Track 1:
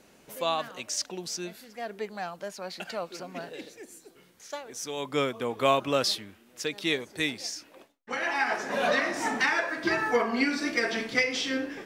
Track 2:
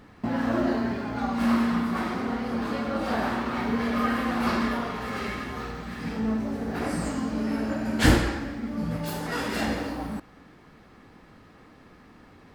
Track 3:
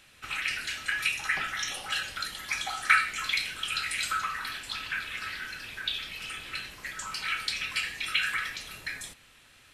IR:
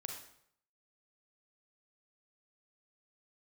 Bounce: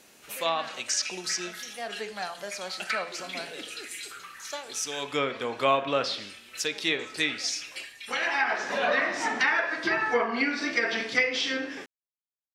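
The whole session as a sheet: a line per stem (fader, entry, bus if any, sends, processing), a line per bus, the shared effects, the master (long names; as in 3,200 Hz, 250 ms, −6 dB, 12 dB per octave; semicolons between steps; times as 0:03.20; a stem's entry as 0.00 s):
−1.5 dB, 0.00 s, send −5 dB, hum removal 86.12 Hz, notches 35
muted
−9.0 dB, 0.00 s, no send, barber-pole flanger 4.4 ms −0.52 Hz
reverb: on, RT60 0.70 s, pre-delay 32 ms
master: treble cut that deepens with the level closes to 2,600 Hz, closed at −21.5 dBFS; spectral tilt +2 dB per octave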